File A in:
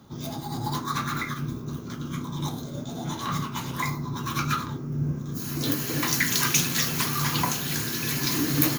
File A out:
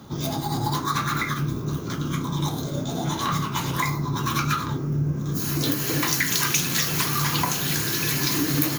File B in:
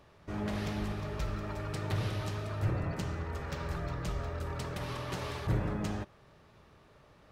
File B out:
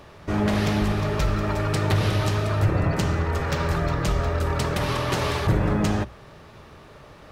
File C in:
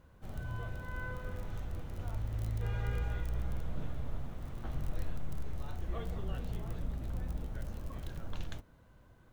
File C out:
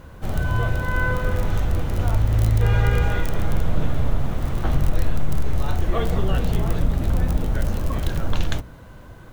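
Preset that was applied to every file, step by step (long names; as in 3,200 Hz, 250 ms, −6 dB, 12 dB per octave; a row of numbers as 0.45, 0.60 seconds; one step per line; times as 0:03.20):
mains-hum notches 60/120/180/240 Hz
downward compressor 2.5 to 1, threshold −31 dBFS
loudness normalisation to −24 LKFS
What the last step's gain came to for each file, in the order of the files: +8.5, +14.0, +19.0 decibels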